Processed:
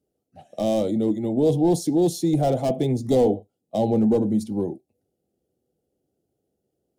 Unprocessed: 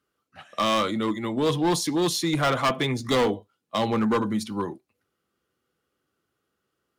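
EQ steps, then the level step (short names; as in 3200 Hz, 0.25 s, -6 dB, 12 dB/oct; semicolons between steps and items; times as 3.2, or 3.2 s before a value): EQ curve 760 Hz 0 dB, 1100 Hz -29 dB, 8000 Hz -7 dB; +4.5 dB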